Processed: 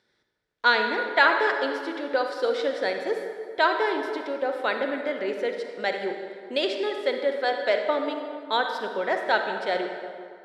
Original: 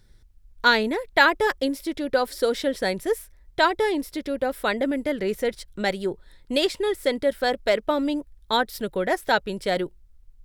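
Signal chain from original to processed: band-pass 400–4100 Hz; reverberation RT60 2.2 s, pre-delay 33 ms, DRR 4 dB; trim -1.5 dB

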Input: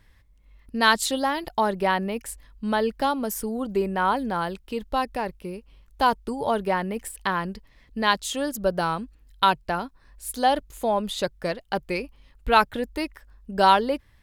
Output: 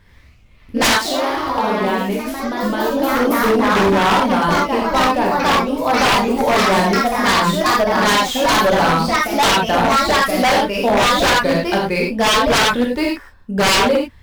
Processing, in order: median filter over 5 samples; 0.87–3.31 s: compression 3:1, threshold -30 dBFS, peak gain reduction 12.5 dB; gated-style reverb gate 130 ms flat, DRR -2.5 dB; ever faster or slower copies 88 ms, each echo +2 st, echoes 3; wavefolder -15 dBFS; trim +6.5 dB

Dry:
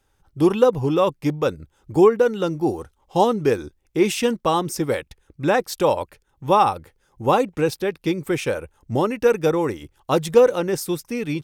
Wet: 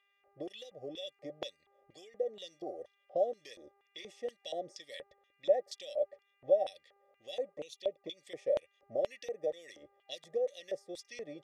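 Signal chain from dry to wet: FFT band-reject 790–1700 Hz; level-controlled noise filter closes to 2.2 kHz, open at -18 dBFS; high-order bell 7.6 kHz +13.5 dB; compression 6:1, threshold -25 dBFS, peak gain reduction 15.5 dB; mains buzz 400 Hz, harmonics 7, -59 dBFS -4 dB/octave; 7.52–8.17 s: touch-sensitive flanger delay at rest 6.1 ms, full sweep at -27 dBFS; small resonant body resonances 580/1100/1900/3400 Hz, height 16 dB, ringing for 40 ms; LFO band-pass square 2.1 Hz 650–3300 Hz; trim -7.5 dB

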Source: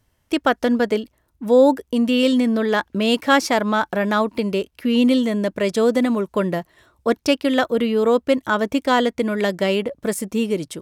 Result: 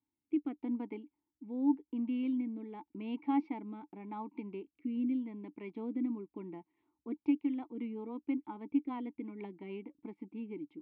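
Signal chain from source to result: rotary cabinet horn 0.85 Hz, later 6.3 Hz, at 6.77 s; vowel filter u; distance through air 410 m; trim -5 dB

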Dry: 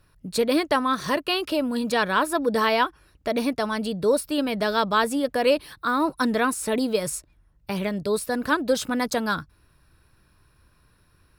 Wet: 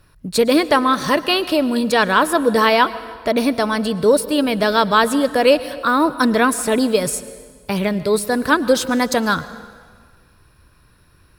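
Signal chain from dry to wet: plate-style reverb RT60 1.7 s, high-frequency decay 0.85×, pre-delay 95 ms, DRR 15.5 dB; trim +7 dB

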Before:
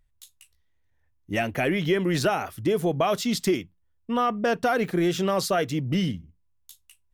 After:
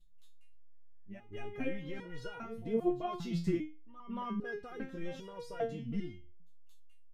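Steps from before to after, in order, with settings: RIAA curve playback; pre-echo 226 ms -14 dB; resonator arpeggio 2.5 Hz 170–480 Hz; trim -1.5 dB

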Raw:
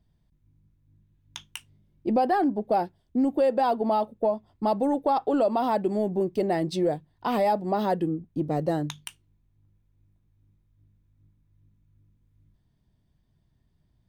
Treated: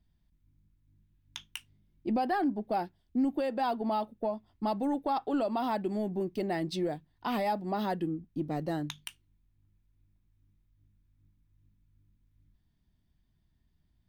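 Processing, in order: graphic EQ 125/500/1000/8000 Hz -7/-9/-3/-5 dB; trim -1 dB

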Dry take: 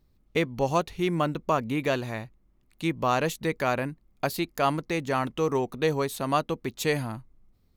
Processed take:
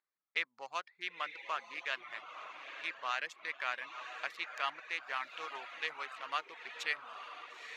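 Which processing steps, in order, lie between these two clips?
local Wiener filter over 15 samples; ladder band-pass 2.5 kHz, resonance 20%; echo that smears into a reverb 948 ms, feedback 53%, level -7 dB; reverb removal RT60 0.54 s; trim +8.5 dB

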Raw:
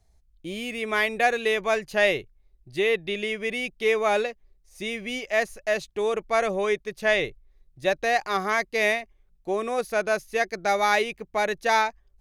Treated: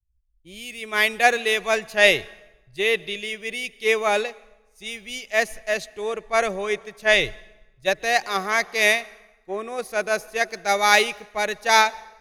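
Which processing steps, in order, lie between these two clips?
treble shelf 2.4 kHz +8.5 dB; plate-style reverb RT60 3.4 s, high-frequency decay 0.55×, pre-delay 115 ms, DRR 18 dB; three bands expanded up and down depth 100%

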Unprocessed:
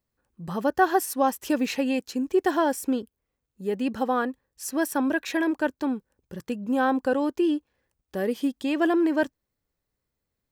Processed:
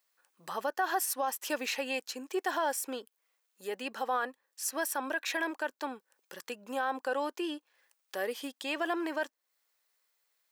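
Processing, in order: high-pass 700 Hz 12 dB/octave; peak limiter -22 dBFS, peak gain reduction 9.5 dB; tape noise reduction on one side only encoder only

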